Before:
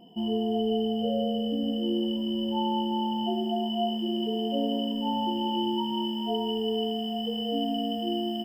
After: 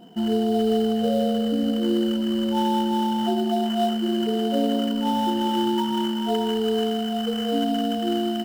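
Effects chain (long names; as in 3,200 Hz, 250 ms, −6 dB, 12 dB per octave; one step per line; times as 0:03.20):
in parallel at −8.5 dB: sample-rate reduction 4,500 Hz, jitter 20%
on the sum: level +3 dB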